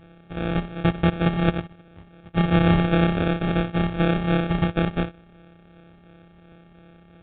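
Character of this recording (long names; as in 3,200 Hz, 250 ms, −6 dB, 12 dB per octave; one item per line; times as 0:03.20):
a buzz of ramps at a fixed pitch in blocks of 256 samples
phaser sweep stages 8, 2.8 Hz, lowest notch 550–2,900 Hz
aliases and images of a low sample rate 1,000 Hz, jitter 0%
mu-law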